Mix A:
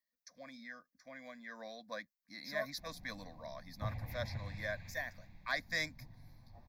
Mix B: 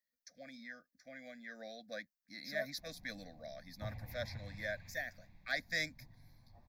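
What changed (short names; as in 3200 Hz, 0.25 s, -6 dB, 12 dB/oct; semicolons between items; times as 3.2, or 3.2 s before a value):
speech: add Butterworth band-stop 1000 Hz, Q 1.8; background -4.5 dB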